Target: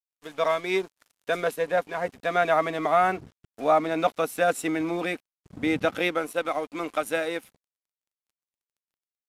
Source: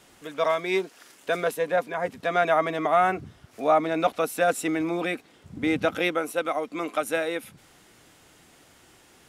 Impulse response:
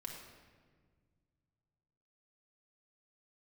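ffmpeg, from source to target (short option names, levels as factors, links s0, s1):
-af "aeval=exprs='sgn(val(0))*max(abs(val(0))-0.00531,0)':c=same,aresample=32000,aresample=44100"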